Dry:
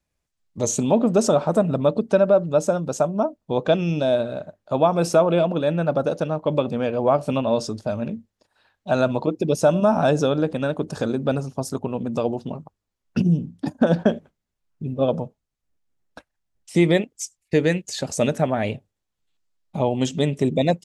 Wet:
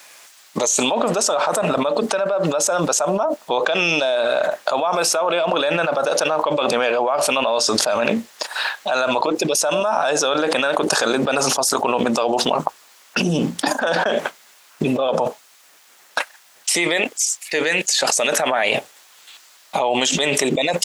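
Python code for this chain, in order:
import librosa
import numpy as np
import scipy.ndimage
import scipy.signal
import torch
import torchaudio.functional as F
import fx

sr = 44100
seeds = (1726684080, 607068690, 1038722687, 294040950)

y = scipy.signal.sosfilt(scipy.signal.butter(2, 900.0, 'highpass', fs=sr, output='sos'), x)
y = fx.env_flatten(y, sr, amount_pct=100)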